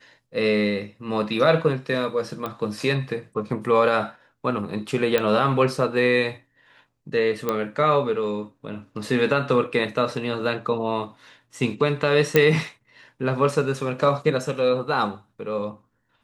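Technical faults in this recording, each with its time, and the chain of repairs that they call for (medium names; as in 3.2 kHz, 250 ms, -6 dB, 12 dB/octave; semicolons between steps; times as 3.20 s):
2.46 s: pop -17 dBFS
5.18 s: pop -8 dBFS
7.49 s: pop -10 dBFS
12.36 s: pop -4 dBFS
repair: de-click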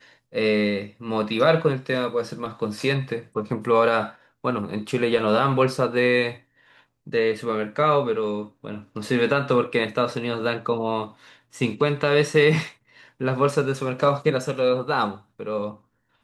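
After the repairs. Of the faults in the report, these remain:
nothing left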